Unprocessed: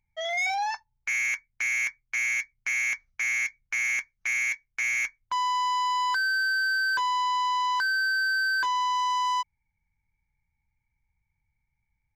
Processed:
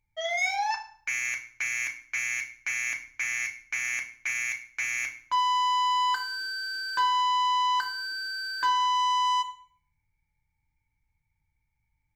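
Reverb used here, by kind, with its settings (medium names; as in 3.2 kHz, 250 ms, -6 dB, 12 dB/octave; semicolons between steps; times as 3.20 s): FDN reverb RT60 0.5 s, low-frequency decay 1.45×, high-frequency decay 0.9×, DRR 3.5 dB; trim -1 dB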